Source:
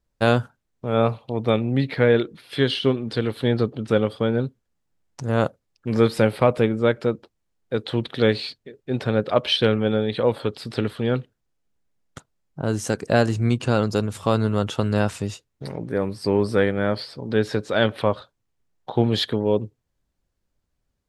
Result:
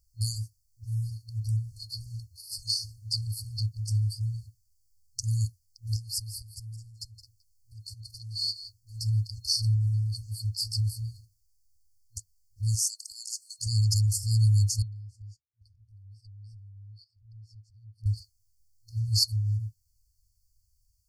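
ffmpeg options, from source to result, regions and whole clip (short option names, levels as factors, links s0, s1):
-filter_complex "[0:a]asettb=1/sr,asplit=3[s0][s1][s2];[s0]atrim=end=5.964[s3];[s1]atrim=start=5.96:end=8.76,asetpts=PTS-STARTPTS,afade=t=in:d=0.004:c=qsin,afade=t=out:st=2.796:d=0.004:c=qsin,acompressor=threshold=0.0224:ratio=3:attack=3.2:release=140:knee=1:detection=peak,aecho=1:1:167:0.211,atrim=end_sample=123480[s4];[s2]atrim=start=8.756[s5];[s3][s4]acrossfade=d=0.004:c1=hsin:c2=qsin[s6];[s6][s5]acrossfade=d=0.004:c1=qsin:c2=hsin,asettb=1/sr,asplit=3[s7][s8][s9];[s7]atrim=end=12.754[s10];[s8]atrim=start=12.75:end=13.67,asetpts=PTS-STARTPTS,afade=t=in:d=0.004:c=qsin,afade=t=out:st=0.916:d=0.004:c=qsin,highpass=f=920:w=0.5412,highpass=f=920:w=1.3066,acompressor=threshold=0.0141:ratio=2:attack=3.2:release=140:knee=1:detection=peak[s11];[s9]atrim=start=13.666[s12];[s10][s11]acrossfade=d=0.004:c1=hsin:c2=qsin[s13];[s13][s12]acrossfade=d=0.004:c1=qsin:c2=hsin,asettb=1/sr,asplit=3[s14][s15][s16];[s14]atrim=end=14.824[s17];[s15]atrim=start=14.82:end=18.06,asetpts=PTS-STARTPTS,afade=t=in:d=0.004:c=qsin,afade=t=out:st=3.236:d=0.004:c=qsin,bandpass=f=270:t=q:w=2.1,acompressor=threshold=0.0178:ratio=2:attack=3.2:release=140:knee=1:detection=peak,agate=range=0.282:threshold=0.00141:ratio=16:release=100:detection=peak[s18];[s16]atrim=start=18.056[s19];[s17][s18]acrossfade=d=0.004:c1=hsin:c2=qsin[s20];[s20][s19]acrossfade=d=0.004:c1=qsin:c2=hsin,aemphasis=mode=production:type=75kf,afftfilt=real='re*(1-between(b*sr/4096,110,4300))':imag='im*(1-between(b*sr/4096,110,4300))':win_size=4096:overlap=0.75,highshelf=f=6500:g=-10.5,volume=2"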